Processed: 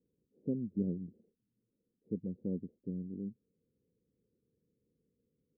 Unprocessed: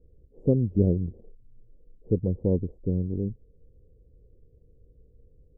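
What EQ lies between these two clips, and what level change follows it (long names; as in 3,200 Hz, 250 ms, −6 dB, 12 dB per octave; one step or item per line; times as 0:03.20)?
four-pole ladder band-pass 250 Hz, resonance 45%
−2.0 dB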